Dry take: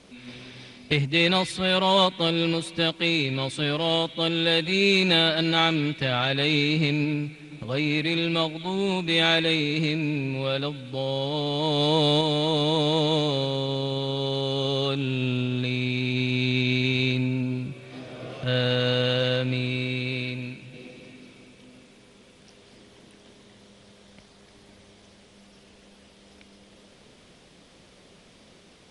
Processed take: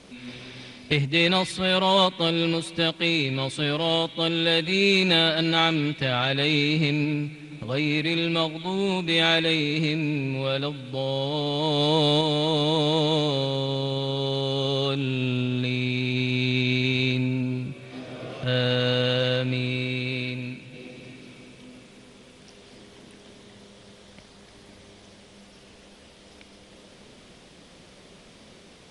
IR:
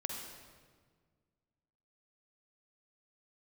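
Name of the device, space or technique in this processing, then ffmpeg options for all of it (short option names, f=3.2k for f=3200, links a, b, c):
ducked reverb: -filter_complex "[0:a]asplit=3[a][b][c];[1:a]atrim=start_sample=2205[d];[b][d]afir=irnorm=-1:irlink=0[e];[c]apad=whole_len=1274548[f];[e][f]sidechaincompress=threshold=-41dB:ratio=8:attack=16:release=769,volume=-5.5dB[g];[a][g]amix=inputs=2:normalize=0"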